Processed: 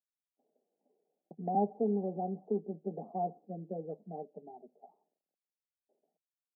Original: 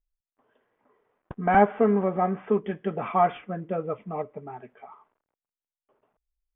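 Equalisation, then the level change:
Chebyshev band-pass filter 160–790 Hz, order 5
dynamic equaliser 620 Hz, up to −8 dB, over −40 dBFS, Q 4.7
−8.5 dB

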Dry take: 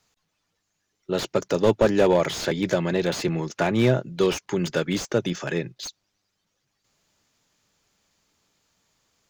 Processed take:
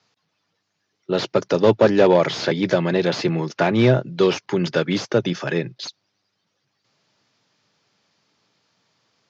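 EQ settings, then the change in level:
elliptic band-pass filter 110–5,300 Hz, stop band 40 dB
+4.5 dB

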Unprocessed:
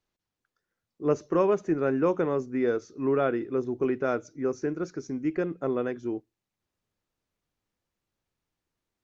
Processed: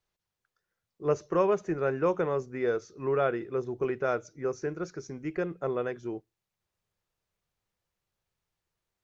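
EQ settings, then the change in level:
parametric band 270 Hz −12 dB 0.51 octaves
0.0 dB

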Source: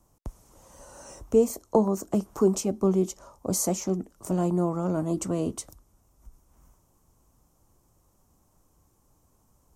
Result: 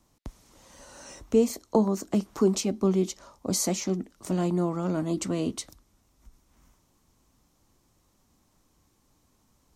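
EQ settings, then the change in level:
octave-band graphic EQ 250/2,000/4,000 Hz +6/+9/+12 dB
−4.0 dB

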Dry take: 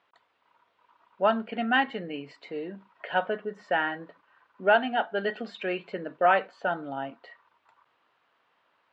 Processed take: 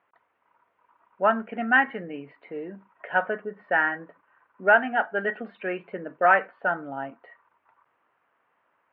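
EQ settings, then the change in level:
low-pass filter 2,300 Hz 24 dB per octave
dynamic equaliser 1,700 Hz, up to +7 dB, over −39 dBFS, Q 1.2
0.0 dB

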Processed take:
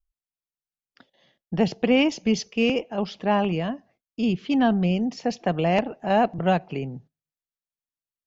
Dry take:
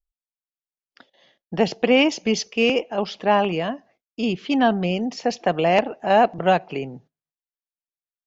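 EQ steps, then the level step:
bass and treble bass +10 dB, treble 0 dB
−5.0 dB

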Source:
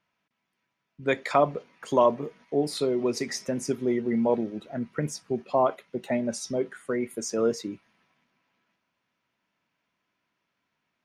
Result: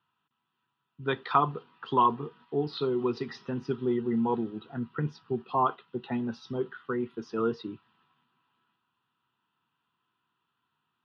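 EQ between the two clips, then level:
loudspeaker in its box 110–3,300 Hz, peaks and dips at 190 Hz −9 dB, 280 Hz −7 dB, 1,700 Hz −7 dB
phaser with its sweep stopped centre 2,200 Hz, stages 6
+5.0 dB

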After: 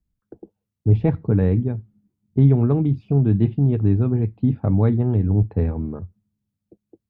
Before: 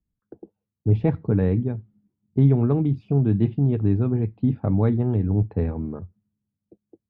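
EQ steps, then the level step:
low-shelf EQ 70 Hz +8 dB
+1.0 dB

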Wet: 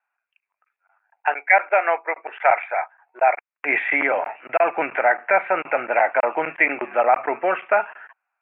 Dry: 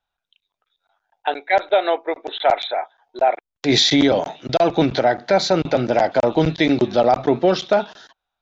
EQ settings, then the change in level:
high-pass filter 1,100 Hz 12 dB per octave
Butterworth low-pass 2,600 Hz 96 dB per octave
+7.5 dB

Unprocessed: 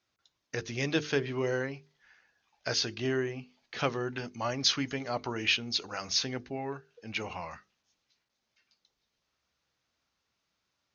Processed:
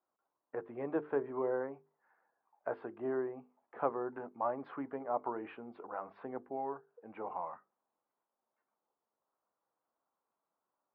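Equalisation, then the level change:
high-pass filter 330 Hz 12 dB per octave
transistor ladder low-pass 1,200 Hz, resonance 40%
high-frequency loss of the air 330 metres
+6.0 dB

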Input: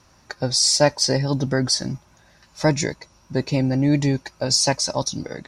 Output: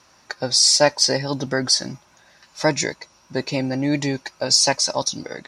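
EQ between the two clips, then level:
spectral tilt +1.5 dB per octave
low-shelf EQ 150 Hz −9.5 dB
high-shelf EQ 7,800 Hz −10 dB
+2.5 dB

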